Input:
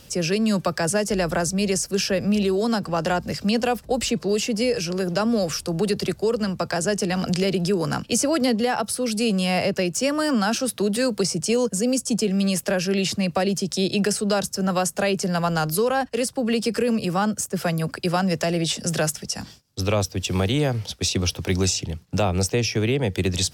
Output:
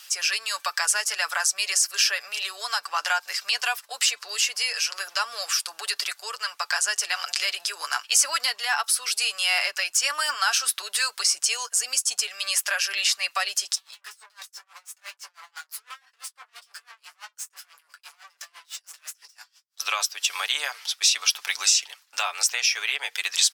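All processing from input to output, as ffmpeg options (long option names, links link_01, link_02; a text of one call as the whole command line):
ffmpeg -i in.wav -filter_complex "[0:a]asettb=1/sr,asplit=3[link_01][link_02][link_03];[link_01]atrim=end=13.754[link_04];[link_02]atrim=start=13.75:end=19.8,asetpts=PTS-STARTPTS,afade=type=in:duration=0.004:curve=qsin,afade=type=out:start_time=6.046:duration=0.004:curve=qsin,aeval=exprs='(tanh(35.5*val(0)+0.4)-tanh(0.4))/35.5':channel_layout=same,flanger=delay=18:depth=2.4:speed=2,aeval=exprs='val(0)*pow(10,-29*(0.5-0.5*cos(2*PI*6*n/s))/20)':channel_layout=same[link_05];[link_03]atrim=start=19.796[link_06];[link_04][link_05]acrossfade=duration=0.004:curve1=hsin:curve2=qsin[link_07];[link_07][link_06]acrossfade=duration=0.004:curve1=qsin:curve2=hsin,highpass=frequency=1100:width=0.5412,highpass=frequency=1100:width=1.3066,aecho=1:1:6.9:0.51,volume=4dB" out.wav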